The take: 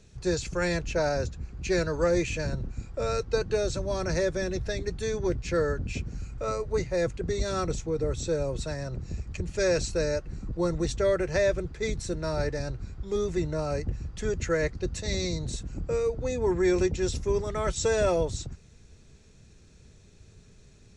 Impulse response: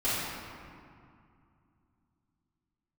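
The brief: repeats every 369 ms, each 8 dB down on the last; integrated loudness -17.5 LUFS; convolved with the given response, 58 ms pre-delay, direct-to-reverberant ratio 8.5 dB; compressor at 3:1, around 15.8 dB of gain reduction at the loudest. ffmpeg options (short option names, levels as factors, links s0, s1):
-filter_complex "[0:a]acompressor=threshold=0.00708:ratio=3,aecho=1:1:369|738|1107|1476|1845:0.398|0.159|0.0637|0.0255|0.0102,asplit=2[s0][s1];[1:a]atrim=start_sample=2205,adelay=58[s2];[s1][s2]afir=irnorm=-1:irlink=0,volume=0.106[s3];[s0][s3]amix=inputs=2:normalize=0,volume=15"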